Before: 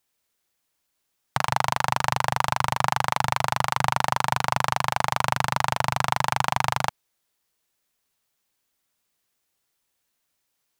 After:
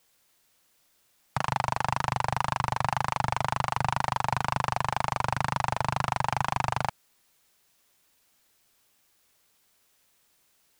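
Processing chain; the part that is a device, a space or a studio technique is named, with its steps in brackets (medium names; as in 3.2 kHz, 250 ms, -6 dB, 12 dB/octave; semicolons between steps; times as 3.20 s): compact cassette (saturation -14.5 dBFS, distortion -8 dB; low-pass 11 kHz 12 dB/octave; wow and flutter; white noise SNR 36 dB)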